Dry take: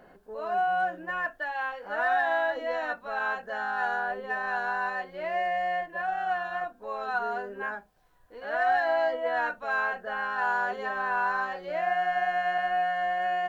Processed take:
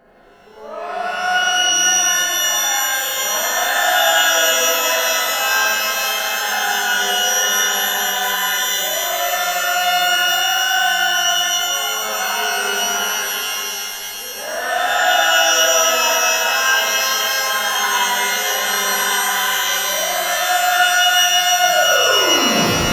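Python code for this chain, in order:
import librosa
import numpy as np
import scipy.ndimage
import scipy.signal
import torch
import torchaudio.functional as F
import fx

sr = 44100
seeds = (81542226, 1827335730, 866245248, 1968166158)

y = fx.tape_stop_end(x, sr, length_s=0.8)
y = fx.stretch_grains(y, sr, factor=1.7, grain_ms=181.0)
y = fx.rev_shimmer(y, sr, seeds[0], rt60_s=3.7, semitones=12, shimmer_db=-2, drr_db=-8.0)
y = y * librosa.db_to_amplitude(1.0)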